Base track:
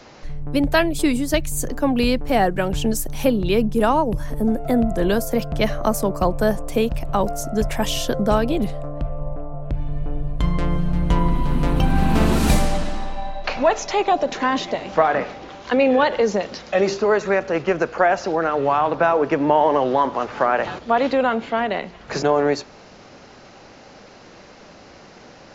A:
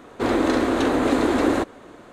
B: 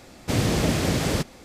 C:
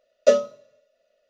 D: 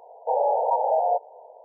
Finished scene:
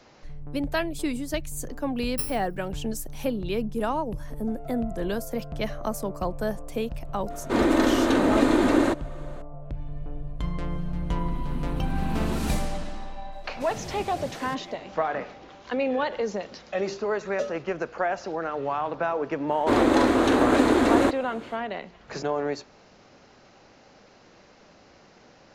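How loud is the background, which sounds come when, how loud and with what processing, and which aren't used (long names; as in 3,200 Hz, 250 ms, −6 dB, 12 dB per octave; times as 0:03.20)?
base track −9.5 dB
0:01.91: mix in C −15.5 dB + samples in bit-reversed order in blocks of 64 samples
0:07.30: mix in A −2 dB + comb filter 3.3 ms, depth 32%
0:13.32: mix in B −12.5 dB + through-zero flanger with one copy inverted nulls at 1.4 Hz, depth 7.9 ms
0:17.12: mix in C −13.5 dB
0:19.47: mix in A, fades 0.05 s
not used: D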